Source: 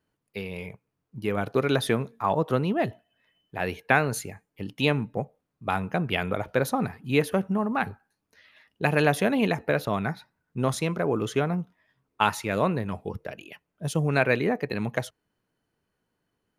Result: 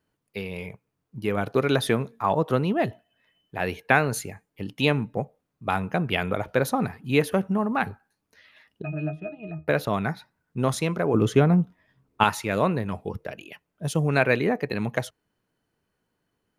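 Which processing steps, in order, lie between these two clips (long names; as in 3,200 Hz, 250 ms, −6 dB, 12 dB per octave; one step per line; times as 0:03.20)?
0:08.82–0:09.68: resonances in every octave D#, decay 0.18 s
0:11.14–0:12.24: low-shelf EQ 410 Hz +9 dB
level +1.5 dB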